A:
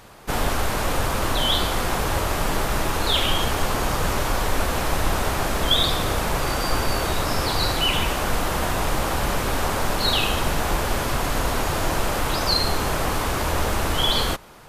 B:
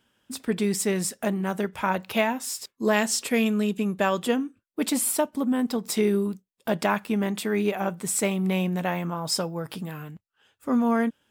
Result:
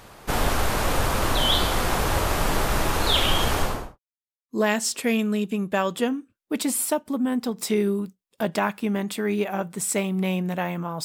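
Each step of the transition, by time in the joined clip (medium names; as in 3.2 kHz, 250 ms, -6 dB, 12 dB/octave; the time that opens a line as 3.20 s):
A
3.55–3.99 s: studio fade out
3.99–4.49 s: mute
4.49 s: go over to B from 2.76 s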